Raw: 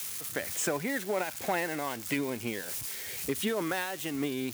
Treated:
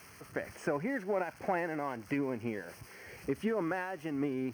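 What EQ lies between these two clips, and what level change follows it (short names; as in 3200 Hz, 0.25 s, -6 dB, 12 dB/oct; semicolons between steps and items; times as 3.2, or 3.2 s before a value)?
running mean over 12 samples; -1.0 dB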